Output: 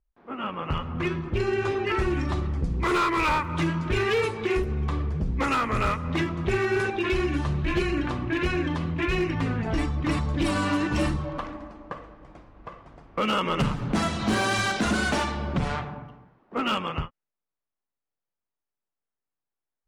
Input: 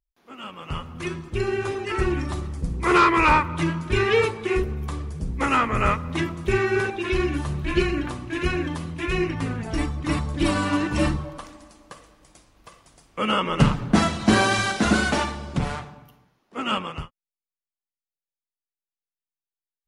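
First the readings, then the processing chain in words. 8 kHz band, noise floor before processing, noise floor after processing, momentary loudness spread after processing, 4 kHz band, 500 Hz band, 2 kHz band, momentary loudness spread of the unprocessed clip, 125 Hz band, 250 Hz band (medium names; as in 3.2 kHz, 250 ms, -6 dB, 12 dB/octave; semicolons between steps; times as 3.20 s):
-4.0 dB, under -85 dBFS, under -85 dBFS, 11 LU, -2.5 dB, -2.5 dB, -3.0 dB, 13 LU, -1.0 dB, -2.5 dB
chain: level-controlled noise filter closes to 1.4 kHz, open at -17 dBFS; compression 2.5:1, threshold -34 dBFS, peak gain reduction 15 dB; hard clipper -26.5 dBFS, distortion -17 dB; trim +8 dB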